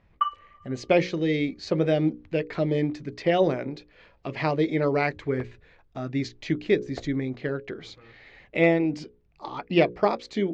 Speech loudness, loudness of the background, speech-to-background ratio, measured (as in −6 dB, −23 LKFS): −26.0 LKFS, −29.5 LKFS, 3.5 dB